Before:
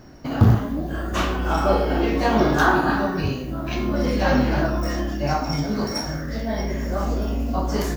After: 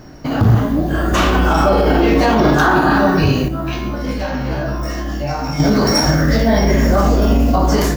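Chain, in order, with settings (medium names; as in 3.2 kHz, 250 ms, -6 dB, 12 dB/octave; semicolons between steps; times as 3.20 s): level rider gain up to 9 dB; peak limiter -11.5 dBFS, peak gain reduction 9.5 dB; 3.48–5.60 s: feedback comb 66 Hz, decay 0.36 s, harmonics all, mix 90%; reverberation RT60 0.70 s, pre-delay 7 ms, DRR 15 dB; trim +7 dB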